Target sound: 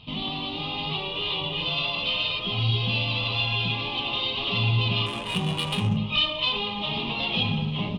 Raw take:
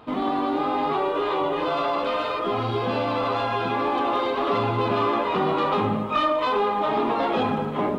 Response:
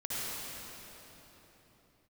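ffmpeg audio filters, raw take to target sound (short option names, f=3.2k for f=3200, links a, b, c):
-filter_complex "[0:a]firequalizer=gain_entry='entry(170,0);entry(270,-19);entry(510,-20);entry(1000,-17);entry(1500,-27);entry(2800,7);entry(4500,0);entry(7900,-21)':delay=0.05:min_phase=1,asettb=1/sr,asplit=3[a][b][c];[a]atrim=end=5.064[d];[b]atrim=start=5.06:end=5.97,asetpts=PTS-STARTPTS,afade=t=in:d=0.004:c=qsin,afade=t=out:st=0.906:d=0.004:c=qsin,adynamicsmooth=sensitivity=5:basefreq=1.1k[e];[c]atrim=start=5.966[f];[d][e]acrossfade=d=0.004:c1=hsin:c2=qsin[g];[g][f]acrossfade=d=0.004:c1=qsin:c2=hsin,volume=7dB"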